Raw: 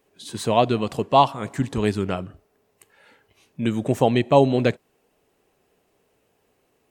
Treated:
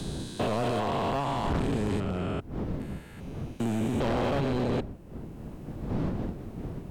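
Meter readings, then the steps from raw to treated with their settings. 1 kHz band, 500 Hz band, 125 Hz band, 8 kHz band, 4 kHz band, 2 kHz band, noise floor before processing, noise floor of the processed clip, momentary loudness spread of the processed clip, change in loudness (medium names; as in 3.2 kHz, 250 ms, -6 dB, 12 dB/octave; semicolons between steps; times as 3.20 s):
-9.5 dB, -9.0 dB, -3.5 dB, -6.5 dB, -8.0 dB, -5.5 dB, -68 dBFS, -45 dBFS, 13 LU, -9.5 dB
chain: spectrogram pixelated in time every 400 ms; wind noise 210 Hz -32 dBFS; hard clipper -24.5 dBFS, distortion -6 dB; three bands compressed up and down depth 40%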